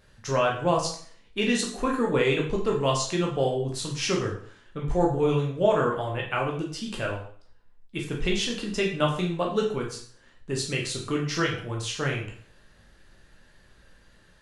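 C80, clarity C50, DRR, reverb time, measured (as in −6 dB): 10.0 dB, 6.0 dB, −2.0 dB, 0.50 s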